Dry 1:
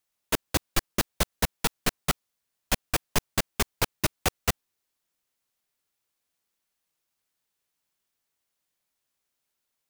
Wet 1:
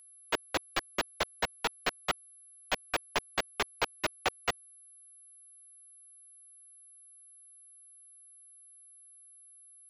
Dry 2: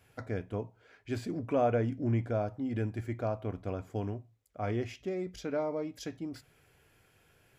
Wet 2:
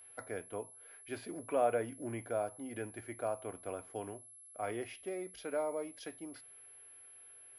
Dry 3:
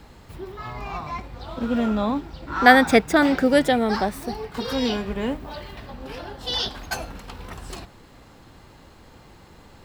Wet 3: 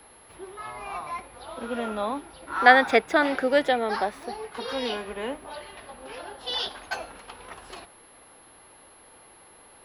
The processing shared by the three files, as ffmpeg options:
-filter_complex "[0:a]aeval=exprs='val(0)+0.0178*sin(2*PI*11000*n/s)':c=same,acrossover=split=350 4800:gain=0.158 1 0.126[a][b][c];[a][b][c]amix=inputs=3:normalize=0,volume=-1.5dB"

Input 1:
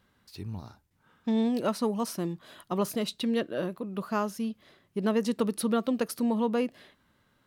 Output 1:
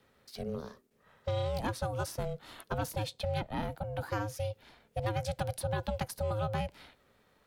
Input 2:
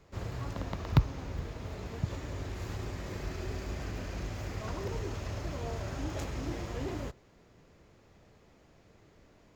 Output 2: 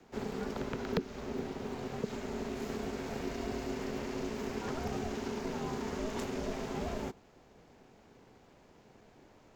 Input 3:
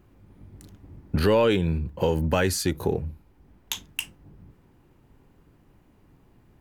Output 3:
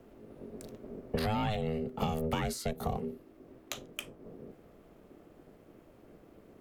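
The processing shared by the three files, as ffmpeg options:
-filter_complex "[0:a]aeval=exprs='val(0)*sin(2*PI*320*n/s)':c=same,acrossover=split=160|430|1300[a][b][c][d];[a]acompressor=threshold=-41dB:ratio=4[e];[b]acompressor=threshold=-41dB:ratio=4[f];[c]acompressor=threshold=-44dB:ratio=4[g];[d]acompressor=threshold=-44dB:ratio=4[h];[e][f][g][h]amix=inputs=4:normalize=0,volume=3.5dB"

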